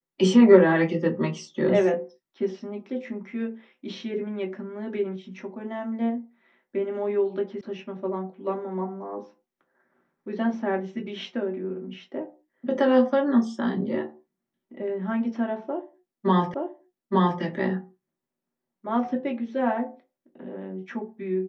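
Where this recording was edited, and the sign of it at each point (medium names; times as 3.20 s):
7.61 s: sound stops dead
16.54 s: repeat of the last 0.87 s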